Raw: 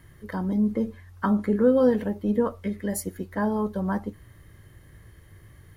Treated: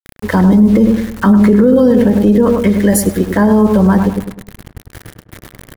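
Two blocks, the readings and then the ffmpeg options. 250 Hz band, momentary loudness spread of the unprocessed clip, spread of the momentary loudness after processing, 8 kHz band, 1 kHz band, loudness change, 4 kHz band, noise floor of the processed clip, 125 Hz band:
+16.5 dB, 11 LU, 6 LU, +16.5 dB, +12.5 dB, +15.0 dB, can't be measured, −51 dBFS, +17.5 dB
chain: -filter_complex "[0:a]agate=range=-33dB:threshold=-47dB:ratio=3:detection=peak,acrossover=split=460|3000[link_01][link_02][link_03];[link_02]acompressor=threshold=-34dB:ratio=2.5[link_04];[link_01][link_04][link_03]amix=inputs=3:normalize=0,aeval=exprs='val(0)*gte(abs(val(0)),0.00562)':channel_layout=same,asplit=2[link_05][link_06];[link_06]adelay=102,lowpass=frequency=1500:poles=1,volume=-6.5dB,asplit=2[link_07][link_08];[link_08]adelay=102,lowpass=frequency=1500:poles=1,volume=0.42,asplit=2[link_09][link_10];[link_10]adelay=102,lowpass=frequency=1500:poles=1,volume=0.42,asplit=2[link_11][link_12];[link_12]adelay=102,lowpass=frequency=1500:poles=1,volume=0.42,asplit=2[link_13][link_14];[link_14]adelay=102,lowpass=frequency=1500:poles=1,volume=0.42[link_15];[link_05][link_07][link_09][link_11][link_13][link_15]amix=inputs=6:normalize=0,alimiter=level_in=20.5dB:limit=-1dB:release=50:level=0:latency=1,volume=-1dB"

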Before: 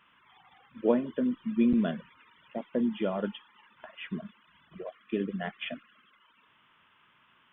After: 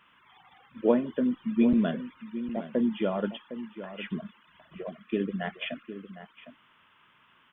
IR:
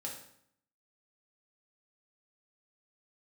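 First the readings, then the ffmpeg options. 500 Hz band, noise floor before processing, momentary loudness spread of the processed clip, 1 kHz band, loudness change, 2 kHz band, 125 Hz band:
+2.0 dB, −65 dBFS, 17 LU, +2.0 dB, +1.5 dB, +2.0 dB, +2.5 dB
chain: -filter_complex "[0:a]asplit=2[link_01][link_02];[link_02]adelay=758,volume=-12dB,highshelf=frequency=4000:gain=-17.1[link_03];[link_01][link_03]amix=inputs=2:normalize=0,volume=2dB"

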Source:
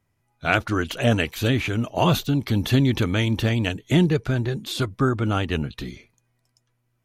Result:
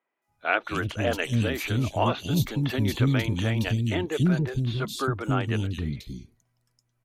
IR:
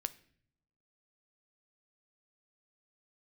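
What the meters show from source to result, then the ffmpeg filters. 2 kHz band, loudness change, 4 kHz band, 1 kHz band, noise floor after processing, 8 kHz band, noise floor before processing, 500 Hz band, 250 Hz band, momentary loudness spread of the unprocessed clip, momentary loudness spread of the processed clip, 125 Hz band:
−3.5 dB, −3.5 dB, −5.5 dB, −2.5 dB, −76 dBFS, −3.0 dB, −72 dBFS, −4.0 dB, −4.5 dB, 8 LU, 7 LU, −2.5 dB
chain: -filter_complex "[0:a]acrossover=split=320|3400[link_01][link_02][link_03];[link_03]adelay=220[link_04];[link_01]adelay=280[link_05];[link_05][link_02][link_04]amix=inputs=3:normalize=0,volume=-2.5dB"

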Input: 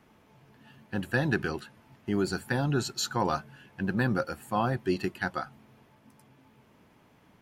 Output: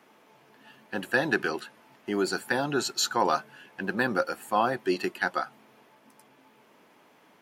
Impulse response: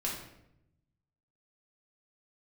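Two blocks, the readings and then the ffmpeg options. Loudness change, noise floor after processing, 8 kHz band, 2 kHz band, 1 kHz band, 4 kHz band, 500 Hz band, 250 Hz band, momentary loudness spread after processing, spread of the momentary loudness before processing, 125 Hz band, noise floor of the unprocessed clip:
+2.0 dB, −60 dBFS, +4.5 dB, +4.5 dB, +4.5 dB, +4.5 dB, +3.0 dB, −1.5 dB, 12 LU, 10 LU, −10.0 dB, −61 dBFS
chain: -af "highpass=330,volume=4.5dB"

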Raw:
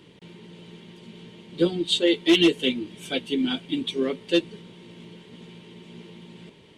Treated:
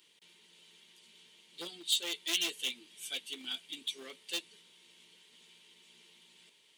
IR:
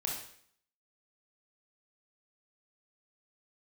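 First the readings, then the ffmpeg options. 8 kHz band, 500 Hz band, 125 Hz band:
+2.0 dB, −25.5 dB, below −30 dB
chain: -af "aeval=exprs='clip(val(0),-1,0.106)':channel_layout=same,aderivative"

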